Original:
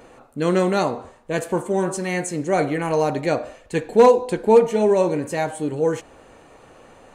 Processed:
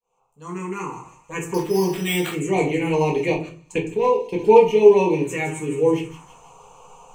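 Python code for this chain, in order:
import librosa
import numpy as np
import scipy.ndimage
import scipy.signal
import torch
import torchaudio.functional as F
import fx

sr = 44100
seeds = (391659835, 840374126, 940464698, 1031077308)

y = fx.fade_in_head(x, sr, length_s=1.99)
y = fx.ripple_eq(y, sr, per_octave=0.73, db=13)
y = fx.env_phaser(y, sr, low_hz=310.0, high_hz=1400.0, full_db=-16.0)
y = fx.low_shelf(y, sr, hz=200.0, db=-10.5)
y = fx.echo_wet_highpass(y, sr, ms=161, feedback_pct=51, hz=3300.0, wet_db=-8.0)
y = fx.resample_bad(y, sr, factor=8, down='none', up='hold', at=(1.54, 2.33))
y = fx.level_steps(y, sr, step_db=22, at=(3.34, 4.39))
y = fx.room_shoebox(y, sr, seeds[0], volume_m3=200.0, walls='furnished', distance_m=1.8)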